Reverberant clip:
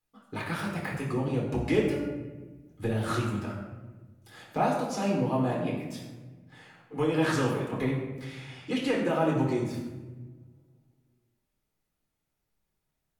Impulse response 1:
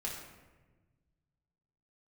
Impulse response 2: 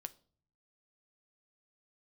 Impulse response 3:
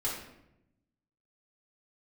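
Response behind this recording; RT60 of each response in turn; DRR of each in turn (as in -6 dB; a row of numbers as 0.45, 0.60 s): 1; 1.3, 0.45, 0.85 s; -3.0, 10.0, -6.5 dB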